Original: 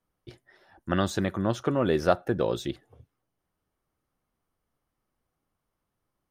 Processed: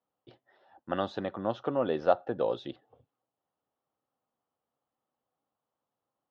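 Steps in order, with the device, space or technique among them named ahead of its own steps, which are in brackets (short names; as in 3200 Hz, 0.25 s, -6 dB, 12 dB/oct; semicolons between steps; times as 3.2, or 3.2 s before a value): kitchen radio (speaker cabinet 180–3700 Hz, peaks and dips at 180 Hz -6 dB, 360 Hz -5 dB, 520 Hz +4 dB, 790 Hz +6 dB, 1600 Hz -4 dB, 2200 Hz -9 dB); gain -4 dB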